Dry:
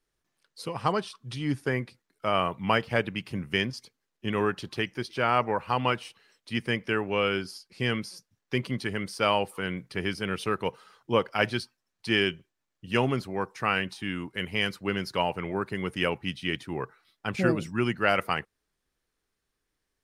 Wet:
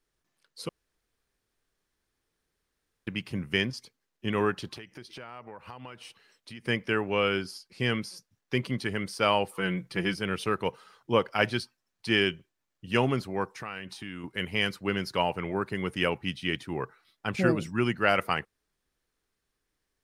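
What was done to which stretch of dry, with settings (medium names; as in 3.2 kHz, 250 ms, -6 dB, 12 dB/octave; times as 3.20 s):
0.69–3.07 s: room tone
4.76–6.65 s: compression, threshold -41 dBFS
9.58–10.16 s: comb 5.9 ms
13.58–14.24 s: compression 3:1, threshold -37 dBFS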